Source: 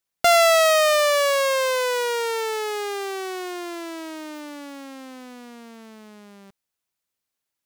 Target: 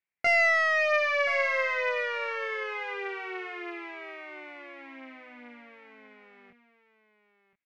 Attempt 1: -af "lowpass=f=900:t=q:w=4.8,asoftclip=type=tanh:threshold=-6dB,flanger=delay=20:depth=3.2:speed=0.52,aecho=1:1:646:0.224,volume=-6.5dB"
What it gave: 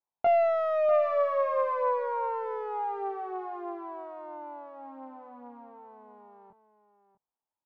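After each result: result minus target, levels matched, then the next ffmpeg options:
2000 Hz band -17.0 dB; echo 0.381 s early
-af "lowpass=f=2.2k:t=q:w=4.8,asoftclip=type=tanh:threshold=-6dB,flanger=delay=20:depth=3.2:speed=0.52,aecho=1:1:646:0.224,volume=-6.5dB"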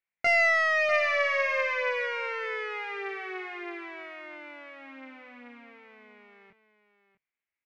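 echo 0.381 s early
-af "lowpass=f=2.2k:t=q:w=4.8,asoftclip=type=tanh:threshold=-6dB,flanger=delay=20:depth=3.2:speed=0.52,aecho=1:1:1027:0.224,volume=-6.5dB"

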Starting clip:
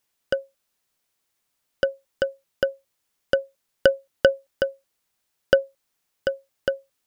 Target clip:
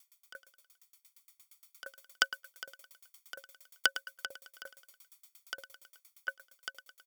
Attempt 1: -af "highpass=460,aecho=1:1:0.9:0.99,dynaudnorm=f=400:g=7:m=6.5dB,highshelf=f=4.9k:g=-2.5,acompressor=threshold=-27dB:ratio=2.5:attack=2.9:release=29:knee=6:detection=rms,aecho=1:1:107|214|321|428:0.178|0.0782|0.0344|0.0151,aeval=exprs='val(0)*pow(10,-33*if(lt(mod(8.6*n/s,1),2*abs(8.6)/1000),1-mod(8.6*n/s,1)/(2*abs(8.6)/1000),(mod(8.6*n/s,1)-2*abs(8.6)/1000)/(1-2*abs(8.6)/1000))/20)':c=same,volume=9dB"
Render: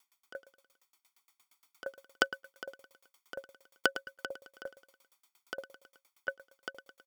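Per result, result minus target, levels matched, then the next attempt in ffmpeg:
500 Hz band +13.0 dB; 8000 Hz band -5.0 dB
-af "highpass=1.3k,aecho=1:1:0.9:0.99,dynaudnorm=f=400:g=7:m=6.5dB,highshelf=f=4.9k:g=-2.5,acompressor=threshold=-27dB:ratio=2.5:attack=2.9:release=29:knee=6:detection=rms,aecho=1:1:107|214|321|428:0.178|0.0782|0.0344|0.0151,aeval=exprs='val(0)*pow(10,-33*if(lt(mod(8.6*n/s,1),2*abs(8.6)/1000),1-mod(8.6*n/s,1)/(2*abs(8.6)/1000),(mod(8.6*n/s,1)-2*abs(8.6)/1000)/(1-2*abs(8.6)/1000))/20)':c=same,volume=9dB"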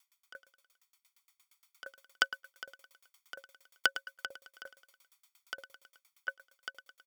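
8000 Hz band -5.0 dB
-af "highpass=1.3k,aecho=1:1:0.9:0.99,dynaudnorm=f=400:g=7:m=6.5dB,highshelf=f=4.9k:g=7.5,acompressor=threshold=-27dB:ratio=2.5:attack=2.9:release=29:knee=6:detection=rms,aecho=1:1:107|214|321|428:0.178|0.0782|0.0344|0.0151,aeval=exprs='val(0)*pow(10,-33*if(lt(mod(8.6*n/s,1),2*abs(8.6)/1000),1-mod(8.6*n/s,1)/(2*abs(8.6)/1000),(mod(8.6*n/s,1)-2*abs(8.6)/1000)/(1-2*abs(8.6)/1000))/20)':c=same,volume=9dB"

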